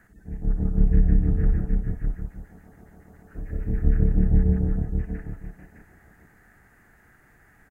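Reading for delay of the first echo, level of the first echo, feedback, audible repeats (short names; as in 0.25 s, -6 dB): 59 ms, -8.0 dB, no steady repeat, 5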